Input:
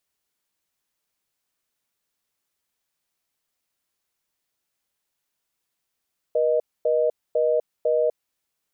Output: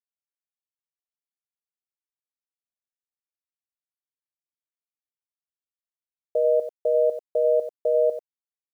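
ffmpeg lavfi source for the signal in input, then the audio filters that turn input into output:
-f lavfi -i "aevalsrc='0.0944*(sin(2*PI*480*t)+sin(2*PI*620*t))*clip(min(mod(t,0.5),0.25-mod(t,0.5))/0.005,0,1)':duration=1.9:sample_rate=44100"
-filter_complex "[0:a]aemphasis=mode=reproduction:type=75kf,asplit=2[link_01][link_02];[link_02]aecho=0:1:92:0.299[link_03];[link_01][link_03]amix=inputs=2:normalize=0,acrusher=bits=9:mix=0:aa=0.000001"

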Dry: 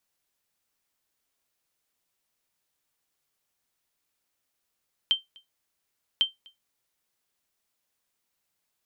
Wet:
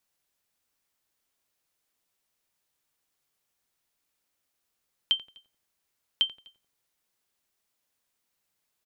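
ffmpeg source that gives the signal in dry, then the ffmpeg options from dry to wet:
-f lavfi -i "aevalsrc='0.2*(sin(2*PI*3130*mod(t,1.1))*exp(-6.91*mod(t,1.1)/0.16)+0.0376*sin(2*PI*3130*max(mod(t,1.1)-0.25,0))*exp(-6.91*max(mod(t,1.1)-0.25,0)/0.16))':duration=2.2:sample_rate=44100"
-filter_complex "[0:a]asplit=2[link_01][link_02];[link_02]adelay=87,lowpass=frequency=1200:poles=1,volume=-11.5dB,asplit=2[link_03][link_04];[link_04]adelay=87,lowpass=frequency=1200:poles=1,volume=0.53,asplit=2[link_05][link_06];[link_06]adelay=87,lowpass=frequency=1200:poles=1,volume=0.53,asplit=2[link_07][link_08];[link_08]adelay=87,lowpass=frequency=1200:poles=1,volume=0.53,asplit=2[link_09][link_10];[link_10]adelay=87,lowpass=frequency=1200:poles=1,volume=0.53,asplit=2[link_11][link_12];[link_12]adelay=87,lowpass=frequency=1200:poles=1,volume=0.53[link_13];[link_01][link_03][link_05][link_07][link_09][link_11][link_13]amix=inputs=7:normalize=0"

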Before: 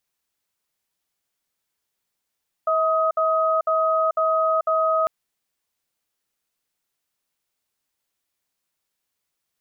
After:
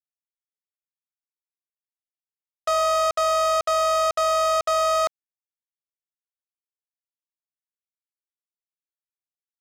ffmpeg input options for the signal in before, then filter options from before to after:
-f lavfi -i "aevalsrc='0.1*(sin(2*PI*642*t)+sin(2*PI*1260*t))*clip(min(mod(t,0.5),0.44-mod(t,0.5))/0.005,0,1)':duration=2.4:sample_rate=44100"
-filter_complex "[0:a]acrossover=split=580|710|790[link_01][link_02][link_03][link_04];[link_03]alimiter=level_in=16.5dB:limit=-24dB:level=0:latency=1,volume=-16.5dB[link_05];[link_01][link_02][link_05][link_04]amix=inputs=4:normalize=0,acrusher=bits=3:mix=0:aa=0.5"

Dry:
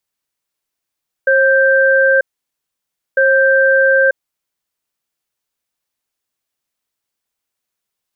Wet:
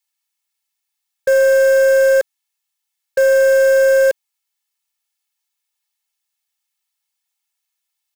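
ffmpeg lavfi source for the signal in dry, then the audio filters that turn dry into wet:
-f lavfi -i "aevalsrc='0.282*(sin(2*PI*537*t)+sin(2*PI*1570*t))*clip(min(mod(t,1.9),0.94-mod(t,1.9))/0.005,0,1)':duration=3.7:sample_rate=44100"
-filter_complex "[0:a]equalizer=frequency=1400:width_type=o:width=0.65:gain=-6,aecho=1:1:2.3:0.82,acrossover=split=780|870[link_01][link_02][link_03];[link_01]acrusher=bits=5:dc=4:mix=0:aa=0.000001[link_04];[link_04][link_02][link_03]amix=inputs=3:normalize=0"

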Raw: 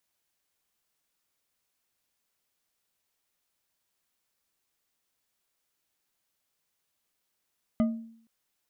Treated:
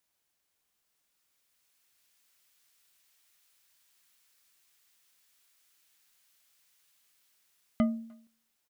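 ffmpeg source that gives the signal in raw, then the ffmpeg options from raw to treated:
-f lavfi -i "aevalsrc='0.112*pow(10,-3*t/0.62)*sin(2*PI*227*t)+0.0422*pow(10,-3*t/0.305)*sin(2*PI*625.8*t)+0.0158*pow(10,-3*t/0.19)*sin(2*PI*1226.7*t)+0.00596*pow(10,-3*t/0.134)*sin(2*PI*2027.8*t)+0.00224*pow(10,-3*t/0.101)*sin(2*PI*3028.2*t)':duration=0.47:sample_rate=44100"
-filter_complex "[0:a]asplit=2[link_01][link_02];[link_02]adelay=300,highpass=300,lowpass=3400,asoftclip=type=hard:threshold=-26.5dB,volume=-27dB[link_03];[link_01][link_03]amix=inputs=2:normalize=0,acrossover=split=1300[link_04][link_05];[link_05]dynaudnorm=framelen=380:gausssize=9:maxgain=11dB[link_06];[link_04][link_06]amix=inputs=2:normalize=0"

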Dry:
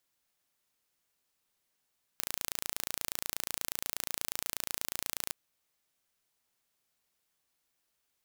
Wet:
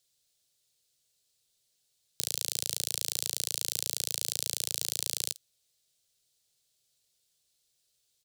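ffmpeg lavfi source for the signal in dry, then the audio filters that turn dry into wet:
-f lavfi -i "aevalsrc='0.473*eq(mod(n,1558),0)':duration=3.14:sample_rate=44100"
-filter_complex "[0:a]equalizer=frequency=125:width_type=o:width=1:gain=8,equalizer=frequency=250:width_type=o:width=1:gain=-8,equalizer=frequency=500:width_type=o:width=1:gain=5,equalizer=frequency=1000:width_type=o:width=1:gain=-12,equalizer=frequency=2000:width_type=o:width=1:gain=-5,equalizer=frequency=4000:width_type=o:width=1:gain=9,equalizer=frequency=8000:width_type=o:width=1:gain=7,acrossover=split=230|550|2600[link_01][link_02][link_03][link_04];[link_04]aecho=1:1:15|51:0.168|0.141[link_05];[link_01][link_02][link_03][link_05]amix=inputs=4:normalize=0"

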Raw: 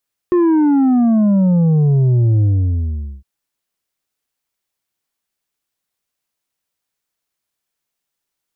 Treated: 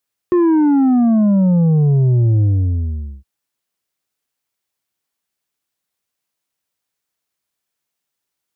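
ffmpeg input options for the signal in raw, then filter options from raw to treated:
-f lavfi -i "aevalsrc='0.299*clip((2.91-t)/0.81,0,1)*tanh(1.88*sin(2*PI*360*2.91/log(65/360)*(exp(log(65/360)*t/2.91)-1)))/tanh(1.88)':duration=2.91:sample_rate=44100"
-af "highpass=52"

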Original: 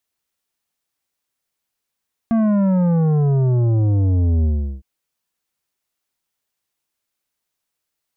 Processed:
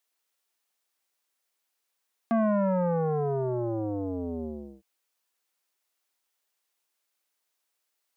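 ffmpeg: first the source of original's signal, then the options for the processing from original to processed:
-f lavfi -i "aevalsrc='0.188*clip((2.51-t)/0.38,0,1)*tanh(3.16*sin(2*PI*230*2.51/log(65/230)*(exp(log(65/230)*t/2.51)-1)))/tanh(3.16)':duration=2.51:sample_rate=44100"
-af "highpass=370"

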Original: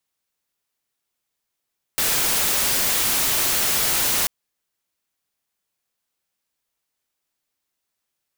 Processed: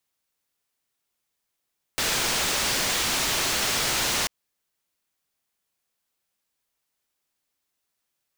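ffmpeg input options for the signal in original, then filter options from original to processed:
-f lavfi -i "anoisesrc=color=white:amplitude=0.163:duration=2.29:sample_rate=44100:seed=1"
-filter_complex "[0:a]acrossover=split=7600[link_01][link_02];[link_02]acompressor=threshold=-34dB:ratio=4:attack=1:release=60[link_03];[link_01][link_03]amix=inputs=2:normalize=0"

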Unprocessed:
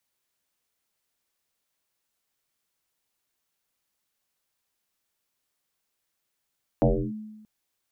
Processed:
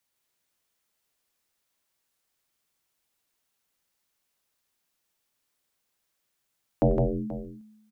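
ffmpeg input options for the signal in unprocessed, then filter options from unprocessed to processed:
-f lavfi -i "aevalsrc='0.178*pow(10,-3*t/1.13)*sin(2*PI*215*t+5.7*clip(1-t/0.31,0,1)*sin(2*PI*0.41*215*t))':duration=0.63:sample_rate=44100"
-af "aecho=1:1:93|162|482:0.133|0.631|0.178"

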